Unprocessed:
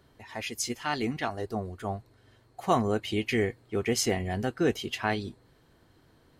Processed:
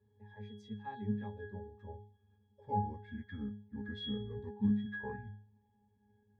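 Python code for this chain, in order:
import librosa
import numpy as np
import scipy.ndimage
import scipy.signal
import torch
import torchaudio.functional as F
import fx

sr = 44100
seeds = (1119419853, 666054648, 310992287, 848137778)

y = fx.pitch_glide(x, sr, semitones=-11.5, runs='starting unshifted')
y = fx.octave_resonator(y, sr, note='G#', decay_s=0.51)
y = F.gain(torch.from_numpy(y), 7.0).numpy()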